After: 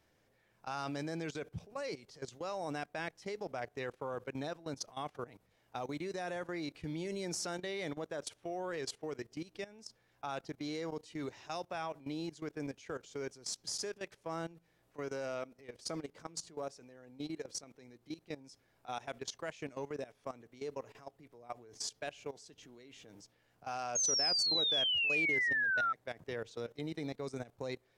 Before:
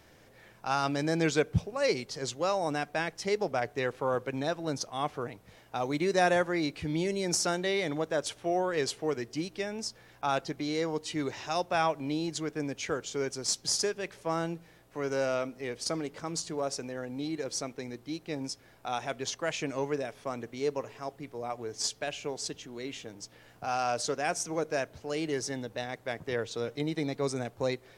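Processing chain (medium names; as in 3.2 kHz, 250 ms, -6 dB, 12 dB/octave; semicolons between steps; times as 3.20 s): level held to a coarse grid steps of 17 dB; painted sound fall, 23.95–25.93 s, 1.3–6.6 kHz -27 dBFS; trim -5 dB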